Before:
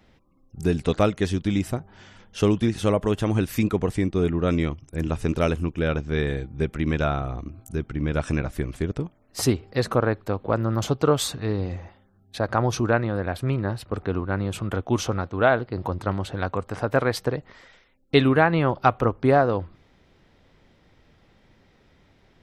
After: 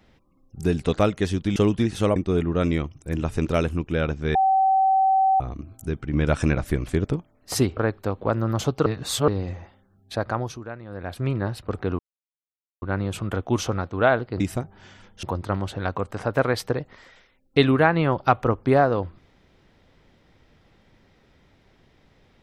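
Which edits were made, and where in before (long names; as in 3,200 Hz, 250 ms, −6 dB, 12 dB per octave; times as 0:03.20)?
0:01.56–0:02.39: move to 0:15.80
0:02.99–0:04.03: remove
0:06.22–0:07.27: beep over 768 Hz −15.5 dBFS
0:08.00–0:09.03: clip gain +3.5 dB
0:09.64–0:10.00: remove
0:11.09–0:11.51: reverse
0:12.37–0:13.55: duck −15 dB, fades 0.47 s
0:14.22: splice in silence 0.83 s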